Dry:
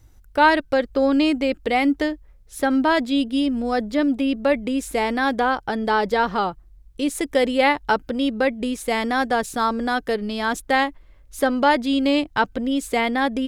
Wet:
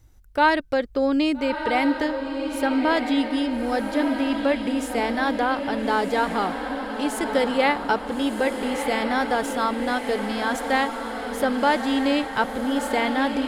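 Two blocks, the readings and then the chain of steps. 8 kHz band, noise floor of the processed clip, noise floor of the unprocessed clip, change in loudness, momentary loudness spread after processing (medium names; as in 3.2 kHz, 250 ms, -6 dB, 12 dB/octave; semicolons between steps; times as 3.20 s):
-2.0 dB, -33 dBFS, -50 dBFS, -2.0 dB, 5 LU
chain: echo that smears into a reverb 1313 ms, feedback 59%, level -6.5 dB; trim -3 dB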